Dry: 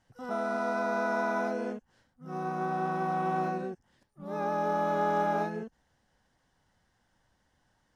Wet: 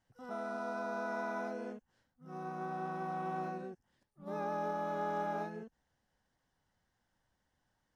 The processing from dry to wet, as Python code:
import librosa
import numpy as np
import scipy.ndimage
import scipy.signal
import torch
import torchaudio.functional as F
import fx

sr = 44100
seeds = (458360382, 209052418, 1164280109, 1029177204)

y = fx.notch(x, sr, hz=2100.0, q=5.6, at=(0.5, 1.08))
y = fx.env_flatten(y, sr, amount_pct=50, at=(4.26, 4.7), fade=0.02)
y = y * librosa.db_to_amplitude(-8.5)